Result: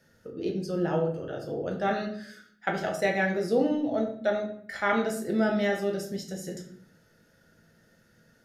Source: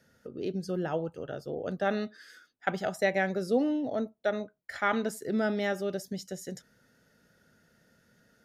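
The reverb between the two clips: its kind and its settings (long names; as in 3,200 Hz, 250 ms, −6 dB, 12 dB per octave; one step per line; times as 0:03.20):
rectangular room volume 92 cubic metres, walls mixed, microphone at 0.72 metres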